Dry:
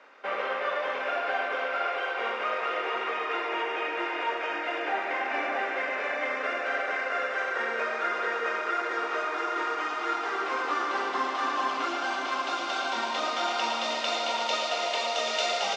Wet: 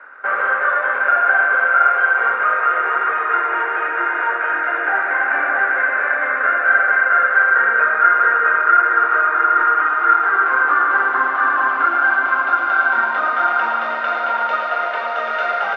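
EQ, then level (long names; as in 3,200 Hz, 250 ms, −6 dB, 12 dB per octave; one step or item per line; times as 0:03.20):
low-pass with resonance 1,500 Hz, resonance Q 6.9
low-shelf EQ 500 Hz −3.5 dB
+4.5 dB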